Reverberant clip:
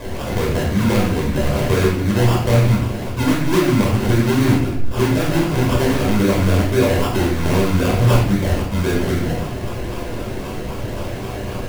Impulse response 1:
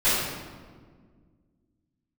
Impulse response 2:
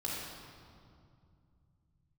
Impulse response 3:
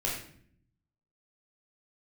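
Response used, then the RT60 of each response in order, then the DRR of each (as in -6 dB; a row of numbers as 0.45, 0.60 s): 3; 1.7, 2.3, 0.60 s; -17.5, -5.0, -4.0 dB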